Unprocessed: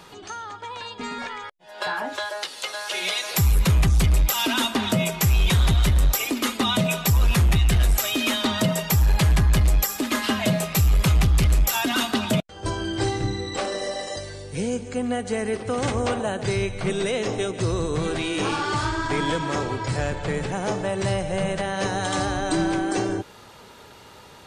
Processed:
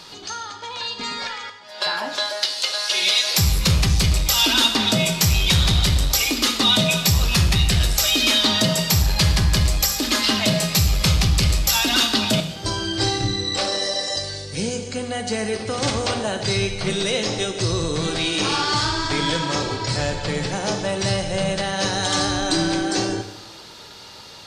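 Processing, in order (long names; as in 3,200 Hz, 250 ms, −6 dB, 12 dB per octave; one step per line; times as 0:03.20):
parametric band 4,700 Hz +13.5 dB 1.1 octaves
soft clipping −5 dBFS, distortion −31 dB
coupled-rooms reverb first 0.78 s, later 2.7 s, DRR 5.5 dB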